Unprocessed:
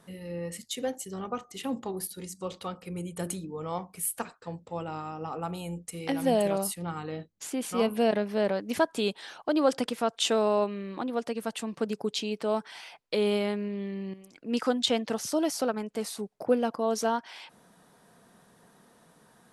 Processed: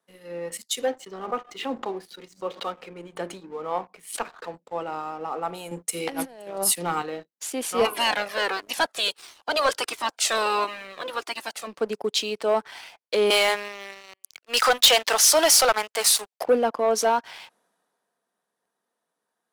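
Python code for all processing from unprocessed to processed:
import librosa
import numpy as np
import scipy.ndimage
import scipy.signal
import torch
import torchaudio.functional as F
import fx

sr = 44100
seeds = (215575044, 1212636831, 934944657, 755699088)

y = fx.chain(x, sr, fx.bandpass_edges(low_hz=120.0, high_hz=3800.0),
    fx.pre_swell(db_per_s=120.0), at=(0.86, 4.54))
y = fx.chain(y, sr, fx.highpass(hz=130.0, slope=12),
    fx.low_shelf(hz=360.0, db=4.0),
    fx.over_compress(threshold_db=-31.0, ratio=-0.5), at=(5.71, 7.02))
y = fx.spec_clip(y, sr, under_db=21, at=(7.84, 11.66), fade=0.02)
y = fx.comb_cascade(y, sr, direction='falling', hz=1.5, at=(7.84, 11.66), fade=0.02)
y = fx.chain(y, sr, fx.highpass(hz=900.0, slope=12),
    fx.leveller(passes=3), at=(13.3, 16.44))
y = scipy.signal.sosfilt(scipy.signal.butter(2, 370.0, 'highpass', fs=sr, output='sos'), y)
y = fx.leveller(y, sr, passes=2)
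y = fx.band_widen(y, sr, depth_pct=40)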